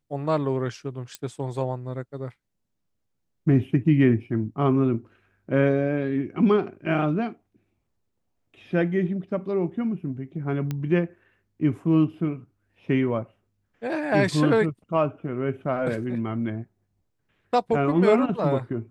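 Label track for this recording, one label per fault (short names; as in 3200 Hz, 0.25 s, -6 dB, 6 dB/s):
1.150000	1.150000	pop -17 dBFS
10.710000	10.710000	pop -16 dBFS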